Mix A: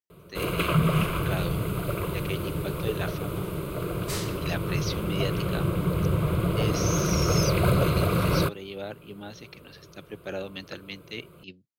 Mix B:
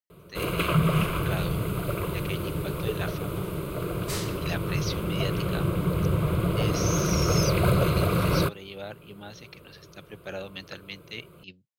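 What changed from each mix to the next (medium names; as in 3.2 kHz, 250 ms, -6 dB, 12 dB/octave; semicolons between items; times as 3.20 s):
speech: add peaking EQ 320 Hz -6.5 dB 1.2 oct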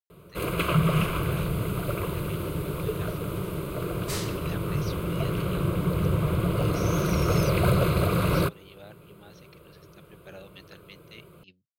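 speech -9.5 dB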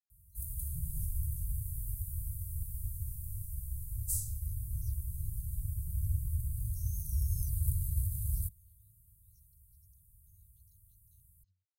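second sound +6.0 dB; master: add inverse Chebyshev band-stop 320–2400 Hz, stop band 70 dB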